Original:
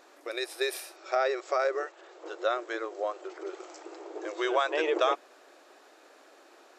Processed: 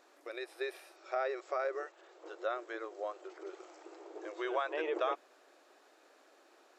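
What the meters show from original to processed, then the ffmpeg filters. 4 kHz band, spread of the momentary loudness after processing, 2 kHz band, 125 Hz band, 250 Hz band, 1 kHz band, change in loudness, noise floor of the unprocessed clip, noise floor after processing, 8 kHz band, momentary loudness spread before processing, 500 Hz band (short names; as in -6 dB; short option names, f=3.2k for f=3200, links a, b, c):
-13.0 dB, 17 LU, -8.0 dB, n/a, -7.5 dB, -7.5 dB, -7.5 dB, -57 dBFS, -65 dBFS, under -15 dB, 16 LU, -7.5 dB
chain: -filter_complex "[0:a]acrossover=split=3200[a][b];[b]acompressor=threshold=-53dB:ratio=4:attack=1:release=60[c];[a][c]amix=inputs=2:normalize=0,volume=-7.5dB"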